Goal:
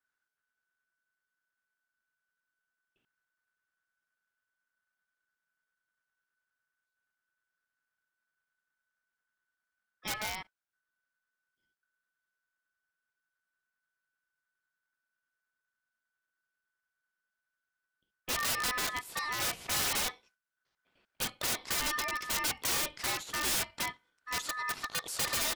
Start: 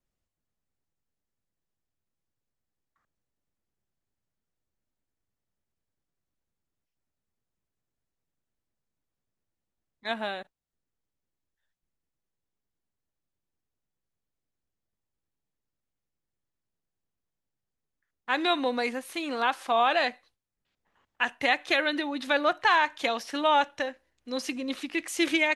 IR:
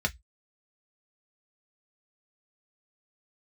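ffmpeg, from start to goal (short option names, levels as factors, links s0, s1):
-af "aeval=exprs='val(0)*sin(2*PI*1500*n/s)':c=same,aeval=exprs='(mod(17.8*val(0)+1,2)-1)/17.8':c=same"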